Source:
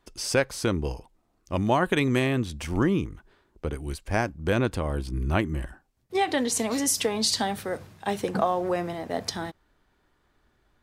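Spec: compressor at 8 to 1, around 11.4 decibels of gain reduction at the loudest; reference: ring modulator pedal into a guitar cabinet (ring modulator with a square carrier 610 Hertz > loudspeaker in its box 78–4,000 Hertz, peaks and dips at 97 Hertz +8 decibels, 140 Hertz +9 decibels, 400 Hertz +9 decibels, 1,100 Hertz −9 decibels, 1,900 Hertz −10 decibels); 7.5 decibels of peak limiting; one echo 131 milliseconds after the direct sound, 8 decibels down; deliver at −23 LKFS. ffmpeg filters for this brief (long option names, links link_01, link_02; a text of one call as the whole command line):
ffmpeg -i in.wav -af "acompressor=threshold=-30dB:ratio=8,alimiter=level_in=1.5dB:limit=-24dB:level=0:latency=1,volume=-1.5dB,aecho=1:1:131:0.398,aeval=exprs='val(0)*sgn(sin(2*PI*610*n/s))':channel_layout=same,highpass=78,equalizer=frequency=97:width_type=q:width=4:gain=8,equalizer=frequency=140:width_type=q:width=4:gain=9,equalizer=frequency=400:width_type=q:width=4:gain=9,equalizer=frequency=1100:width_type=q:width=4:gain=-9,equalizer=frequency=1900:width_type=q:width=4:gain=-10,lowpass=frequency=4000:width=0.5412,lowpass=frequency=4000:width=1.3066,volume=12.5dB" out.wav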